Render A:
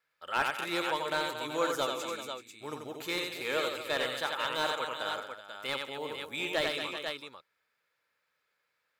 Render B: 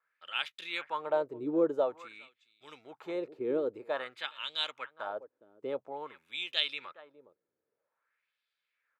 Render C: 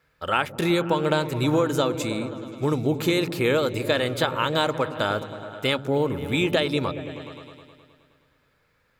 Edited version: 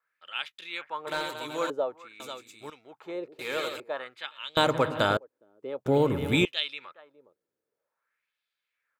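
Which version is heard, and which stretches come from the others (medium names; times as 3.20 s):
B
1.07–1.70 s: from A
2.20–2.70 s: from A
3.39–3.80 s: from A
4.57–5.17 s: from C
5.86–6.45 s: from C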